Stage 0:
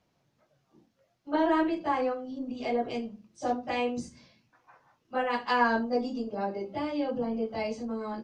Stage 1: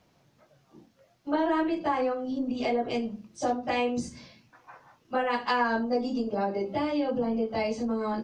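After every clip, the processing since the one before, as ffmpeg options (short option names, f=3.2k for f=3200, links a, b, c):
-af "acompressor=threshold=-35dB:ratio=2.5,volume=8dB"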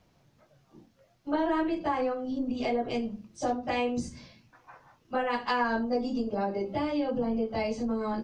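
-af "lowshelf=f=82:g=11,volume=-2dB"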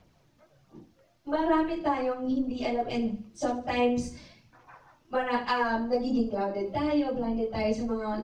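-af "aphaser=in_gain=1:out_gain=1:delay=3.4:decay=0.41:speed=1.3:type=sinusoidal,aecho=1:1:74|148|222|296:0.158|0.0666|0.028|0.0117"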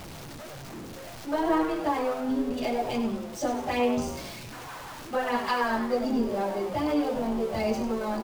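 -filter_complex "[0:a]aeval=exprs='val(0)+0.5*0.0168*sgn(val(0))':c=same,asplit=6[a][b][c][d][e][f];[b]adelay=97,afreqshift=150,volume=-11dB[g];[c]adelay=194,afreqshift=300,volume=-17.2dB[h];[d]adelay=291,afreqshift=450,volume=-23.4dB[i];[e]adelay=388,afreqshift=600,volume=-29.6dB[j];[f]adelay=485,afreqshift=750,volume=-35.8dB[k];[a][g][h][i][j][k]amix=inputs=6:normalize=0,volume=-1dB"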